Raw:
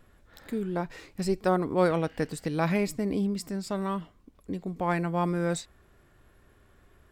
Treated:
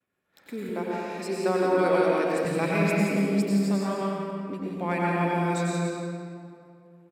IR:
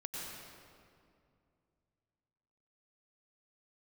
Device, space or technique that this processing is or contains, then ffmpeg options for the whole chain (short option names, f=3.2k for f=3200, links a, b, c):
PA in a hall: -filter_complex "[0:a]agate=range=-33dB:threshold=-47dB:ratio=3:detection=peak,highpass=180,equalizer=f=2.4k:t=o:w=0.3:g=8,aecho=1:1:172:0.447[a];[1:a]atrim=start_sample=2205[b];[a][b]afir=irnorm=-1:irlink=0,asettb=1/sr,asplit=3[c][d][e];[c]atrim=end=0.694[f];[d]atrim=start=0.69:end=2.45,asetpts=PTS-STARTPTS,afade=t=in:d=0.004:c=qsin,afade=t=out:st=1.756:d=0.004:c=qsin,highpass=f=210:w=0.5412,highpass=f=210:w=1.3066[g];[e]atrim=start=2.446[h];[f][g]acrossfade=d=0.004:c1=hsin:c2=qsin[i];[i][h]acrossfade=d=0.004:c1=qsin:c2=hsin,volume=2dB"